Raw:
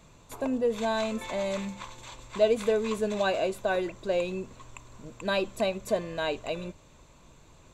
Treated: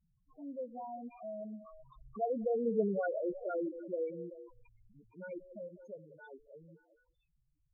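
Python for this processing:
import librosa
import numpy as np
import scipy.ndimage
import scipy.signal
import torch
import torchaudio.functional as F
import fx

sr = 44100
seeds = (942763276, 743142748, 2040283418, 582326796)

p1 = fx.doppler_pass(x, sr, speed_mps=28, closest_m=4.5, pass_at_s=2.81)
p2 = fx.notch(p1, sr, hz=590.0, q=14.0)
p3 = fx.over_compress(p2, sr, threshold_db=-41.0, ratio=-0.5)
p4 = p2 + (p3 * librosa.db_to_amplitude(-0.5))
p5 = fx.echo_stepped(p4, sr, ms=190, hz=420.0, octaves=0.7, feedback_pct=70, wet_db=-10)
y = fx.spec_topn(p5, sr, count=4)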